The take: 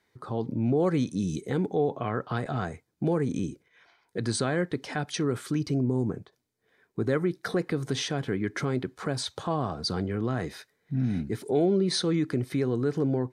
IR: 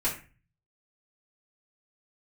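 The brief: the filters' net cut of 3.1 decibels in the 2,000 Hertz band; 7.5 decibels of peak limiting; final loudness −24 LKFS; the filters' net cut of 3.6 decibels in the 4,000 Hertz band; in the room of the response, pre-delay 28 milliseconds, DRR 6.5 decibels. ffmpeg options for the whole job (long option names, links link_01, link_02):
-filter_complex "[0:a]equalizer=frequency=2000:width_type=o:gain=-3.5,equalizer=frequency=4000:width_type=o:gain=-3.5,alimiter=limit=-21dB:level=0:latency=1,asplit=2[link_01][link_02];[1:a]atrim=start_sample=2205,adelay=28[link_03];[link_02][link_03]afir=irnorm=-1:irlink=0,volume=-14.5dB[link_04];[link_01][link_04]amix=inputs=2:normalize=0,volume=7dB"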